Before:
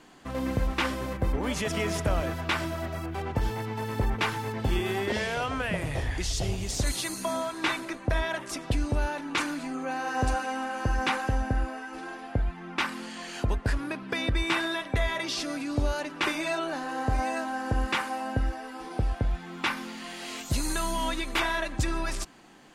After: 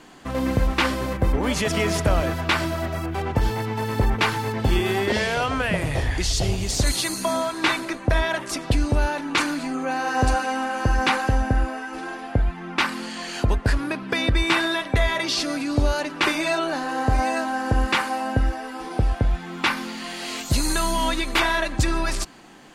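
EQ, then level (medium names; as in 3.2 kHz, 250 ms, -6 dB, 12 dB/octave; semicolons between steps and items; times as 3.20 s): dynamic bell 4.4 kHz, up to +4 dB, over -56 dBFS, Q 6.7; +6.5 dB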